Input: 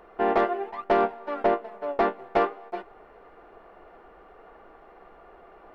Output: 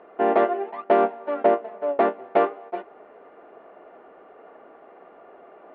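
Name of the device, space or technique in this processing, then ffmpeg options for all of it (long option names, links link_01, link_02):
kitchen radio: -af "highpass=170,equalizer=frequency=260:width_type=q:width=4:gain=7,equalizer=frequency=420:width_type=q:width=4:gain=3,equalizer=frequency=610:width_type=q:width=4:gain=7,lowpass=frequency=3400:width=0.5412,lowpass=frequency=3400:width=1.3066"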